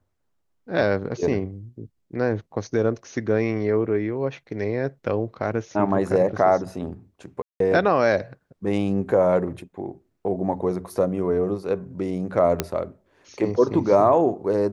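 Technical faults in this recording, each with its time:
7.42–7.60 s: dropout 183 ms
12.60 s: pop -6 dBFS

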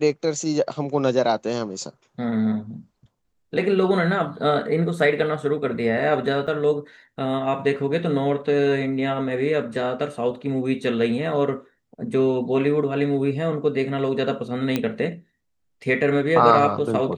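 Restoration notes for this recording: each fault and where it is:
6.47–6.48 s: dropout 6.8 ms
14.76 s: pop -9 dBFS

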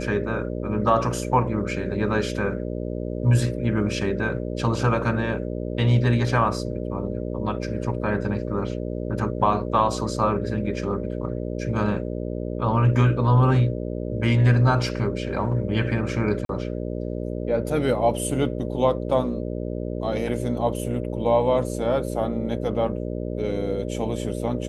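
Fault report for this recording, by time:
buzz 60 Hz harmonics 10 -29 dBFS
16.45–16.49 s: dropout 42 ms

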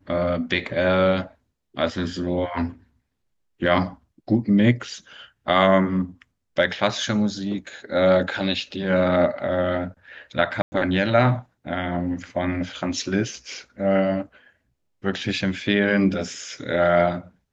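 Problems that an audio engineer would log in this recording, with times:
10.62–10.72 s: dropout 100 ms

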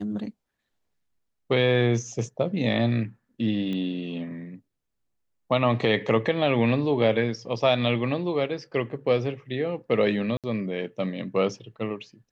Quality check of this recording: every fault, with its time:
3.73 s: pop -22 dBFS
10.37–10.44 s: dropout 67 ms

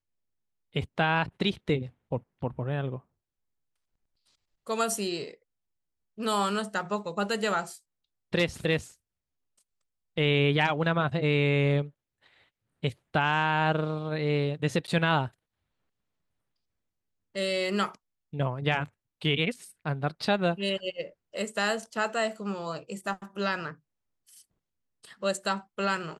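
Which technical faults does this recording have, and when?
14.87–14.88 s: dropout 9.6 ms

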